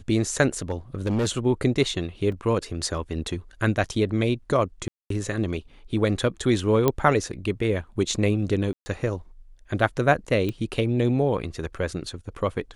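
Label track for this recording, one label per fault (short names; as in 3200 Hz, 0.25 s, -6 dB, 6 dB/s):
0.580000	1.280000	clipped -20 dBFS
2.320000	2.320000	gap 2.9 ms
4.880000	5.100000	gap 0.223 s
6.880000	6.880000	pop -7 dBFS
8.730000	8.860000	gap 0.13 s
10.490000	10.490000	pop -16 dBFS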